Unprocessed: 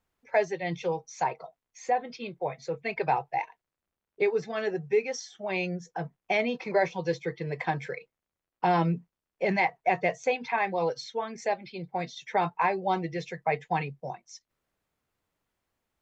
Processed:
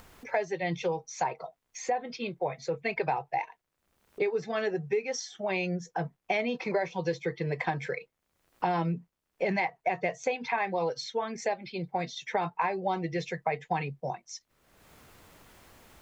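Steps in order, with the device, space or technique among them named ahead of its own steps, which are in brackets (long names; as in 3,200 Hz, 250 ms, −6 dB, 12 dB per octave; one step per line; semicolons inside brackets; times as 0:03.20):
upward and downward compression (upward compression, threshold −39 dBFS; downward compressor 4 to 1, threshold −29 dBFS, peak gain reduction 9.5 dB)
level +3 dB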